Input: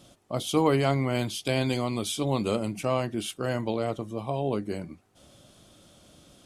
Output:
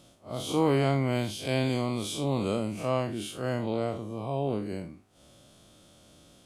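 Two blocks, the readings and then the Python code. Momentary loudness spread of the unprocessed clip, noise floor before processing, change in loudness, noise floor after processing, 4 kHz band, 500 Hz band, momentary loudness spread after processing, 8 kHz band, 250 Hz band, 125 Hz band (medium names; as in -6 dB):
9 LU, -61 dBFS, -1.5 dB, -59 dBFS, -3.0 dB, -1.5 dB, 11 LU, -4.0 dB, -1.0 dB, -0.5 dB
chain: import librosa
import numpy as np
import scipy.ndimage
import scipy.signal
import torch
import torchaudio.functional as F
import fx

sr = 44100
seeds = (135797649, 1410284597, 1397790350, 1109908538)

y = fx.spec_blur(x, sr, span_ms=108.0)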